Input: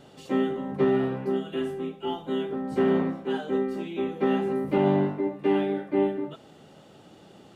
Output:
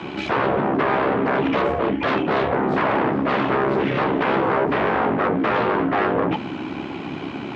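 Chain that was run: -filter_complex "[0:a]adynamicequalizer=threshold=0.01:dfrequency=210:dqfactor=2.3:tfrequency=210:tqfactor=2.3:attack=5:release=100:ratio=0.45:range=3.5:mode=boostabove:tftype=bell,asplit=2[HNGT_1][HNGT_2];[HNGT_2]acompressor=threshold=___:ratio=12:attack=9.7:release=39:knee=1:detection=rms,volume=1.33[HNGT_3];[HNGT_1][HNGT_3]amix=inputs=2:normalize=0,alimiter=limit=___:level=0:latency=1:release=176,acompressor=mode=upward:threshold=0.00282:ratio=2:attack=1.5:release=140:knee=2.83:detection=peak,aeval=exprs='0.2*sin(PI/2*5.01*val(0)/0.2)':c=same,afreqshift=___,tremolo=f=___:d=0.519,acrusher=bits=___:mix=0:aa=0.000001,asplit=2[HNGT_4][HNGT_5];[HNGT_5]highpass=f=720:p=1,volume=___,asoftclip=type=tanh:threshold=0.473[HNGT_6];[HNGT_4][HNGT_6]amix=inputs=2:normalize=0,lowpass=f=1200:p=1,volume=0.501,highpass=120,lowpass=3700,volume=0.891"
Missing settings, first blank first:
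0.0178, 0.2, -470, 68, 10, 5.01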